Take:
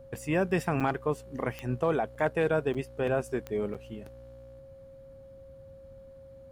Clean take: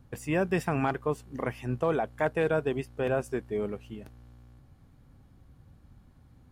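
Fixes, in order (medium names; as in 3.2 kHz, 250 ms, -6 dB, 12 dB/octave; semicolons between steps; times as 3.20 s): de-click; band-stop 540 Hz, Q 30; interpolate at 0.80/2.15/2.74/3.74 s, 6.8 ms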